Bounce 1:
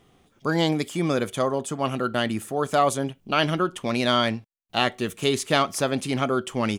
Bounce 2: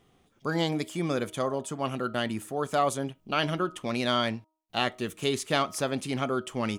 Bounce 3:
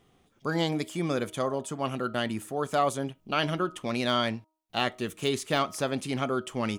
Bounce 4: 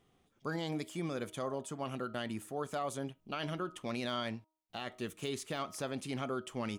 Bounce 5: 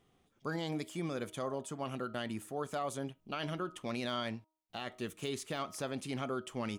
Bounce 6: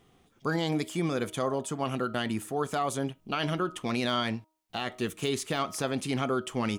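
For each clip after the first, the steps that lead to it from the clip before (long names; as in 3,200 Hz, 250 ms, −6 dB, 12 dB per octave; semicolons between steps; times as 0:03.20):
hum removal 315.7 Hz, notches 4; level −5 dB
de-essing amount 60%
brickwall limiter −20.5 dBFS, peak gain reduction 9 dB; level −7 dB
no processing that can be heard
notch filter 580 Hz, Q 14; level +8.5 dB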